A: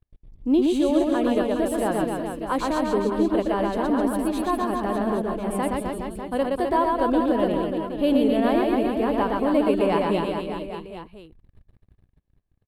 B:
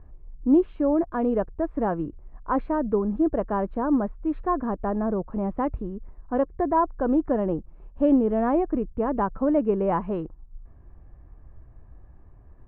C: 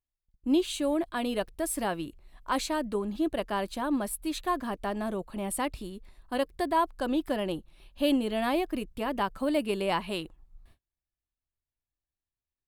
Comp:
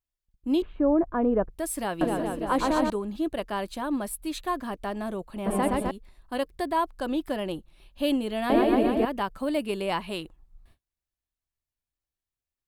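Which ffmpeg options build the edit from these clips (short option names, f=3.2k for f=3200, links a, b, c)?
-filter_complex "[0:a]asplit=3[a][b][c];[2:a]asplit=5[d][e][f][g][h];[d]atrim=end=0.622[i];[1:a]atrim=start=0.618:end=1.502[j];[e]atrim=start=1.498:end=2.012[k];[a]atrim=start=2.008:end=2.902[l];[f]atrim=start=2.898:end=5.462[m];[b]atrim=start=5.458:end=5.912[n];[g]atrim=start=5.908:end=8.502[o];[c]atrim=start=8.498:end=9.052[p];[h]atrim=start=9.048[q];[i][j]acrossfade=d=0.004:c1=hsin:c2=hsin[r];[r][k]acrossfade=d=0.004:c1=hsin:c2=hsin[s];[s][l]acrossfade=d=0.004:c1=hsin:c2=hsin[t];[t][m]acrossfade=d=0.004:c1=hsin:c2=hsin[u];[u][n]acrossfade=d=0.004:c1=hsin:c2=hsin[v];[v][o]acrossfade=d=0.004:c1=hsin:c2=hsin[w];[w][p]acrossfade=d=0.004:c1=hsin:c2=hsin[x];[x][q]acrossfade=d=0.004:c1=hsin:c2=hsin"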